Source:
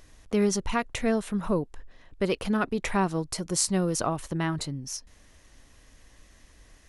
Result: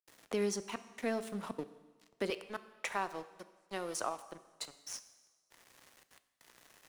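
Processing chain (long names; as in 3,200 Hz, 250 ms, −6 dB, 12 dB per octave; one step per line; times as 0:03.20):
high-pass filter 260 Hz 12 dB per octave, from 0:02.30 550 Hz
upward compression, threshold −38 dBFS
dead-zone distortion −45 dBFS
gate pattern ".xxxxxxx.x.." 199 BPM −60 dB
coupled-rooms reverb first 0.94 s, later 2.6 s, from −28 dB, DRR 12 dB
multiband upward and downward compressor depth 40%
level −5 dB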